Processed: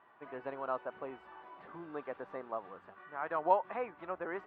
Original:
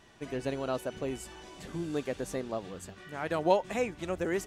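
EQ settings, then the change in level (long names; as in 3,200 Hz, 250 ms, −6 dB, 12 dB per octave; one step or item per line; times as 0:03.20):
resonant band-pass 1,100 Hz, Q 2.1
high-frequency loss of the air 430 metres
+5.5 dB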